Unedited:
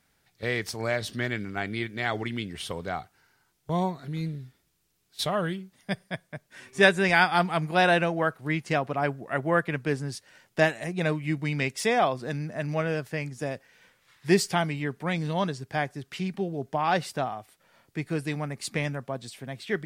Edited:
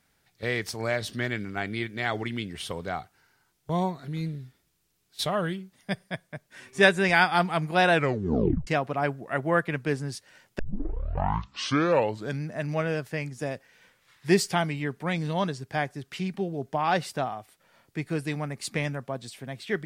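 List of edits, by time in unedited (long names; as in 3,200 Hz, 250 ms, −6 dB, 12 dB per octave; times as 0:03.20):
0:07.92: tape stop 0.75 s
0:10.59: tape start 1.83 s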